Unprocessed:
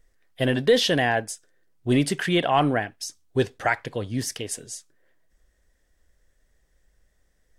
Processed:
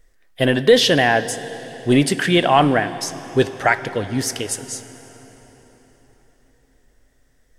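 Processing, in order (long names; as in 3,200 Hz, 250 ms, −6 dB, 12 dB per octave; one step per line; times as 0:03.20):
parametric band 93 Hz −3 dB 1.8 octaves
convolution reverb RT60 4.6 s, pre-delay 7 ms, DRR 13 dB
level +6.5 dB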